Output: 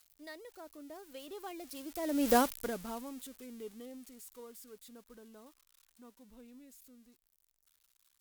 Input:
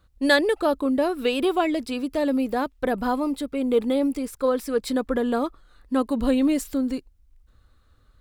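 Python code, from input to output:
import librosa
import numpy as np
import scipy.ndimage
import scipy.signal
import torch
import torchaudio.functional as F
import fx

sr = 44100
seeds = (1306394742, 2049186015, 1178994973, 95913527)

y = x + 0.5 * 10.0 ** (-19.0 / 20.0) * np.diff(np.sign(x), prepend=np.sign(x[:1]))
y = fx.doppler_pass(y, sr, speed_mps=29, closest_m=2.0, pass_at_s=2.34)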